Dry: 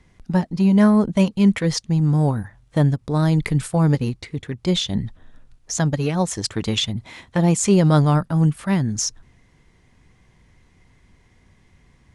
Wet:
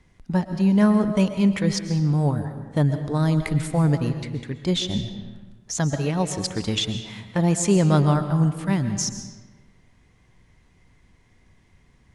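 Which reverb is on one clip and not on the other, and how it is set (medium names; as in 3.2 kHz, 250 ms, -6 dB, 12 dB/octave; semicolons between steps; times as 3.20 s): algorithmic reverb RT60 1.3 s, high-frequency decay 0.7×, pre-delay 90 ms, DRR 8.5 dB; trim -3 dB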